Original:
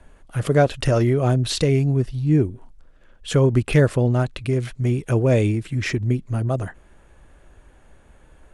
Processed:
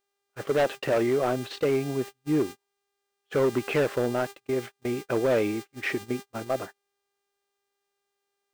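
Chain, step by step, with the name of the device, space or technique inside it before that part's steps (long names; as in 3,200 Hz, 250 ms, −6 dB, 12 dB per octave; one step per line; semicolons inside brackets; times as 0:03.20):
aircraft radio (band-pass filter 350–2,500 Hz; hard clipping −18.5 dBFS, distortion −11 dB; hum with harmonics 400 Hz, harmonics 23, −44 dBFS −4 dB per octave; white noise bed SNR 22 dB; noise gate −33 dBFS, range −38 dB)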